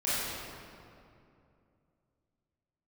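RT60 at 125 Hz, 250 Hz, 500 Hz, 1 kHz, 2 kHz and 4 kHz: 3.3 s, 3.1 s, 2.8 s, 2.4 s, 2.0 s, 1.5 s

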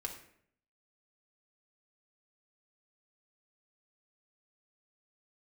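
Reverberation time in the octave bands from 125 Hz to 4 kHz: 0.80 s, 0.75 s, 0.70 s, 0.60 s, 0.60 s, 0.45 s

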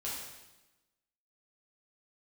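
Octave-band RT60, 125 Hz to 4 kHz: 1.1 s, 1.2 s, 1.1 s, 1.0 s, 1.0 s, 1.0 s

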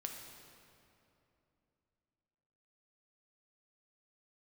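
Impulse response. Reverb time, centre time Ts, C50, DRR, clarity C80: 2.9 s, 68 ms, 3.5 dB, 2.0 dB, 5.0 dB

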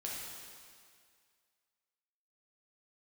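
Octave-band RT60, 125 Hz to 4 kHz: 1.9 s, 2.0 s, 2.0 s, 2.1 s, 2.1 s, 2.0 s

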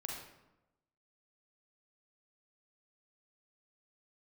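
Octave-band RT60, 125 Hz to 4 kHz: 1.1 s, 1.1 s, 1.0 s, 0.95 s, 0.75 s, 0.60 s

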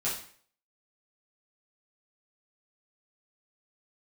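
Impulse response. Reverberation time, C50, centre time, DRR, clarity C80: 0.50 s, 5.0 dB, 35 ms, -8.5 dB, 9.5 dB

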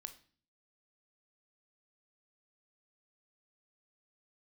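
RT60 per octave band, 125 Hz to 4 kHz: 0.70 s, 0.65 s, 0.45 s, 0.40 s, 0.45 s, 0.45 s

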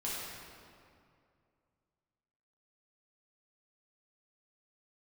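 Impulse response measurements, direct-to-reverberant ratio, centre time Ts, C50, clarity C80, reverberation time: -8.0 dB, 140 ms, -3.0 dB, -0.5 dB, 2.4 s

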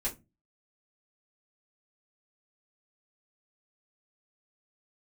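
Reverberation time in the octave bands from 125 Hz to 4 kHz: 0.50 s, 0.40 s, 0.25 s, 0.20 s, 0.20 s, 0.15 s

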